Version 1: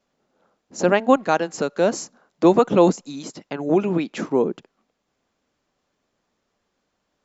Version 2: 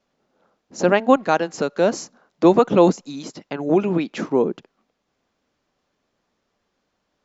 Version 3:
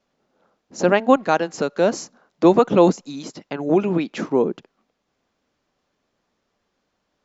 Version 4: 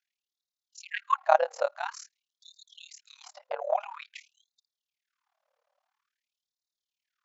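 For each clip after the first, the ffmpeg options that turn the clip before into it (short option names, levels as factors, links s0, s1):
-af "lowpass=f=6800:w=0.5412,lowpass=f=6800:w=1.3066,volume=1.12"
-af anull
-af "tremolo=f=37:d=0.947,tiltshelf=f=1100:g=8,afftfilt=real='re*gte(b*sr/1024,470*pow(3600/470,0.5+0.5*sin(2*PI*0.49*pts/sr)))':imag='im*gte(b*sr/1024,470*pow(3600/470,0.5+0.5*sin(2*PI*0.49*pts/sr)))':win_size=1024:overlap=0.75"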